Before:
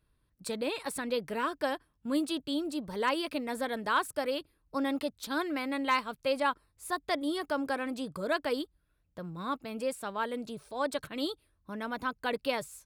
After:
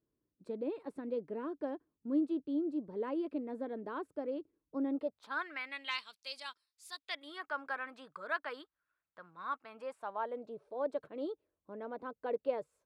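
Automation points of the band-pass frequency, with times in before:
band-pass, Q 1.9
4.94 s 340 Hz
5.34 s 1300 Hz
6.17 s 4800 Hz
6.89 s 4800 Hz
7.43 s 1400 Hz
9.6 s 1400 Hz
10.59 s 480 Hz

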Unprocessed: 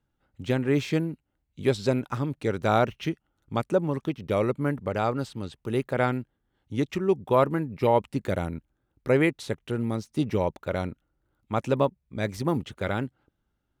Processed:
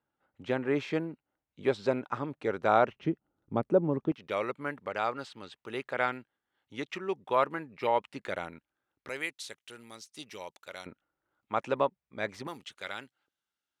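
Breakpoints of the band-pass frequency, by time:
band-pass, Q 0.59
970 Hz
from 2.96 s 370 Hz
from 4.12 s 2000 Hz
from 9.09 s 6500 Hz
from 10.86 s 1400 Hz
from 12.47 s 4800 Hz

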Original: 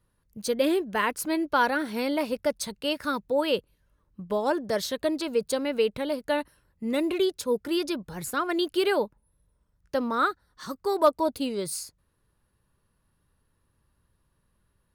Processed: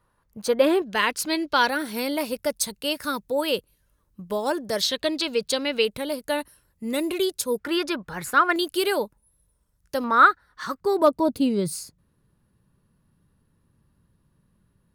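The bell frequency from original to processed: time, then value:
bell +11.5 dB 1.9 oct
1000 Hz
from 0.82 s 4100 Hz
from 1.69 s 14000 Hz
from 4.81 s 3600 Hz
from 5.85 s 12000 Hz
from 7.59 s 1500 Hz
from 8.56 s 12000 Hz
from 10.04 s 1600 Hz
from 10.8 s 180 Hz

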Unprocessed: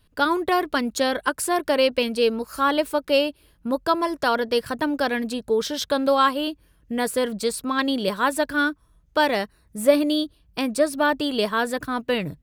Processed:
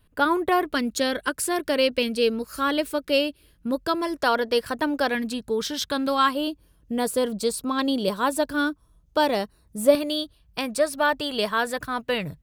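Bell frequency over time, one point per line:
bell -7.5 dB 1 oct
4900 Hz
from 0.73 s 870 Hz
from 4.17 s 140 Hz
from 5.15 s 590 Hz
from 6.35 s 1900 Hz
from 9.95 s 300 Hz

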